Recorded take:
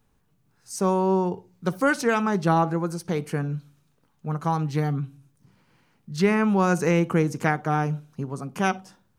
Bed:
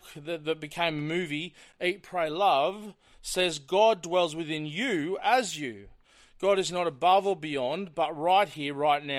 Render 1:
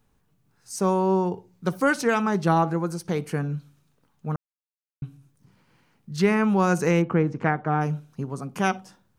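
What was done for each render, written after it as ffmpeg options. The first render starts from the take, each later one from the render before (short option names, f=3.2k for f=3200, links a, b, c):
-filter_complex "[0:a]asplit=3[a][b][c];[a]afade=t=out:st=7.01:d=0.02[d];[b]lowpass=2.2k,afade=t=in:st=7.01:d=0.02,afade=t=out:st=7.8:d=0.02[e];[c]afade=t=in:st=7.8:d=0.02[f];[d][e][f]amix=inputs=3:normalize=0,asplit=3[g][h][i];[g]atrim=end=4.36,asetpts=PTS-STARTPTS,afade=t=out:st=4.356:d=0.004:c=hsin[j];[h]atrim=start=4.36:end=5.02,asetpts=PTS-STARTPTS,volume=0[k];[i]atrim=start=5.02,asetpts=PTS-STARTPTS,afade=t=in:d=0.004:c=hsin[l];[j][k][l]concat=n=3:v=0:a=1"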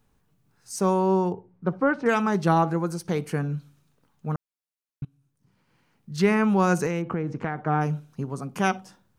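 -filter_complex "[0:a]asettb=1/sr,asplit=3[a][b][c];[a]atrim=end=1.324[d];[b]atrim=start=1.32:end=2.06,asetpts=PTS-STARTPTS,afade=t=in:d=0.004:c=qsin,afade=t=out:st=0.736:d=0.004:c=qsin,lowpass=1.4k[e];[c]atrim=start=2.056[f];[d][e]acrossfade=d=0.004:c1=hsin:c2=qsin[g];[g][f]acrossfade=d=0.004:c1=qsin:c2=hsin,asettb=1/sr,asplit=3[h][i][j];[h]atrim=end=6.864[k];[i]atrim=start=6.86:end=7.66,asetpts=PTS-STARTPTS,afade=t=in:d=0.004:c=qsin,afade=t=out:st=0.796:d=0.004:c=qsin,acompressor=threshold=-23dB:ratio=6:attack=3.2:release=140:knee=1:detection=peak[l];[j]atrim=start=7.656[m];[k][l]acrossfade=d=0.004:c1=hsin:c2=qsin[n];[n][m]acrossfade=d=0.004:c1=qsin:c2=hsin,asplit=2[o][p];[o]atrim=end=5.05,asetpts=PTS-STARTPTS,afade=t=out:st=5.046:d=0.004:c=hsin:silence=0.105925[q];[p]atrim=start=5.05,asetpts=PTS-STARTPTS,afade=t=in:d=1.23:silence=0.105925[r];[q][r]concat=n=2:v=0:a=1"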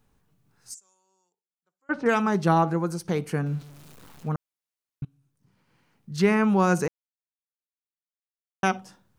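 -filter_complex "[0:a]asplit=3[a][b][c];[a]afade=t=out:st=0.73:d=0.02[d];[b]bandpass=f=7.3k:t=q:w=20,afade=t=in:st=0.73:d=0.02,afade=t=out:st=1.89:d=0.02[e];[c]afade=t=in:st=1.89:d=0.02[f];[d][e][f]amix=inputs=3:normalize=0,asettb=1/sr,asplit=3[g][h][i];[g]atrim=end=3.464[j];[h]atrim=start=3.46:end=4.29,asetpts=PTS-STARTPTS,afade=t=in:d=0.004:c=qsin,afade=t=out:st=0.826:d=0.004:c=qsin,aeval=exprs='val(0)+0.5*0.00668*sgn(val(0))':c=same[k];[i]atrim=start=4.286[l];[j][k]acrossfade=d=0.004:c1=hsin:c2=qsin[m];[m][l]acrossfade=d=0.004:c1=qsin:c2=hsin,asplit=3[n][o][p];[n]atrim=end=6.88,asetpts=PTS-STARTPTS,afade=t=out:st=6.876:d=0.004:c=hsin[q];[o]atrim=start=6.88:end=8.63,asetpts=PTS-STARTPTS,volume=0[r];[p]atrim=start=8.63,asetpts=PTS-STARTPTS,afade=t=in:d=0.004:c=hsin[s];[q][r][s]concat=n=3:v=0:a=1"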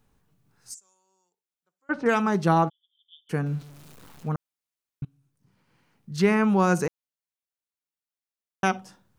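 -filter_complex "[0:a]asplit=3[a][b][c];[a]afade=t=out:st=2.68:d=0.02[d];[b]asuperpass=centerf=3300:order=12:qfactor=5.8,afade=t=in:st=2.68:d=0.02,afade=t=out:st=3.29:d=0.02[e];[c]afade=t=in:st=3.29:d=0.02[f];[d][e][f]amix=inputs=3:normalize=0"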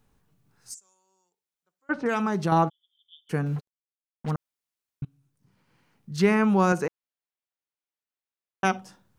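-filter_complex "[0:a]asettb=1/sr,asplit=3[a][b][c];[a]atrim=end=1.944[d];[b]atrim=start=1.94:end=2.52,asetpts=PTS-STARTPTS,afade=t=in:d=0.004:c=qsin,afade=t=out:st=0.576:d=0.004:c=qsin,acompressor=threshold=-22dB:ratio=2.5:attack=3.2:release=140:knee=1:detection=peak[e];[c]atrim=start=2.516[f];[d][e]acrossfade=d=0.004:c1=hsin:c2=qsin[g];[g][f]acrossfade=d=0.004:c1=qsin:c2=hsin,asettb=1/sr,asplit=3[h][i][j];[h]atrim=end=3.564[k];[i]atrim=start=3.56:end=4.31,asetpts=PTS-STARTPTS,afade=t=in:d=0.004:c=qsin,afade=t=out:st=0.746:d=0.004:c=qsin,acrusher=bits=5:mix=0:aa=0.5[l];[j]atrim=start=4.306[m];[k][l]acrossfade=d=0.004:c1=hsin:c2=qsin[n];[n][m]acrossfade=d=0.004:c1=qsin:c2=hsin,asettb=1/sr,asplit=3[o][p][q];[o]atrim=end=6.724[r];[p]atrim=start=6.72:end=8.65,asetpts=PTS-STARTPTS,afade=t=in:d=0.004:c=qsin,afade=t=out:st=1.926:d=0.004:c=qsin,bass=f=250:g=-6,treble=f=4k:g=-8[s];[q]atrim=start=8.646[t];[r][s]acrossfade=d=0.004:c1=hsin:c2=qsin[u];[u][t]acrossfade=d=0.004:c1=qsin:c2=hsin"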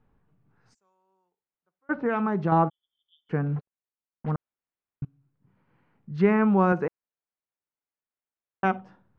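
-af "lowpass=2.1k,aemphasis=mode=reproduction:type=50fm"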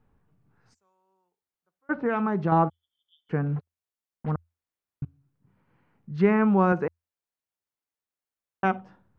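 -af "equalizer=f=84:w=7.1:g=7"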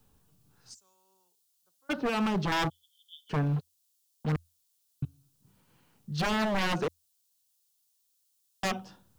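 -filter_complex "[0:a]acrossover=split=240|1100[a][b][c];[c]aexciter=amount=6:drive=6.9:freq=3k[d];[a][b][d]amix=inputs=3:normalize=0,aeval=exprs='0.0708*(abs(mod(val(0)/0.0708+3,4)-2)-1)':c=same"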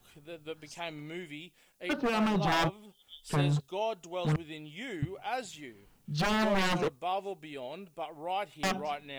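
-filter_complex "[1:a]volume=-11.5dB[a];[0:a][a]amix=inputs=2:normalize=0"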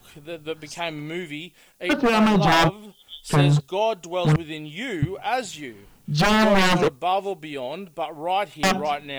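-af "volume=10.5dB"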